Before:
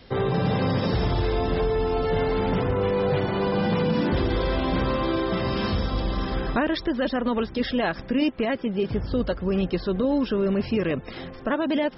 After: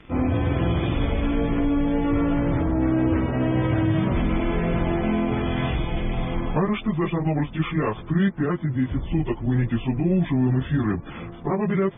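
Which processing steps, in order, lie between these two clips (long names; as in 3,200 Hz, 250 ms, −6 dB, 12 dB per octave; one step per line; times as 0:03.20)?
phase-vocoder pitch shift without resampling −7.5 semitones
level +3 dB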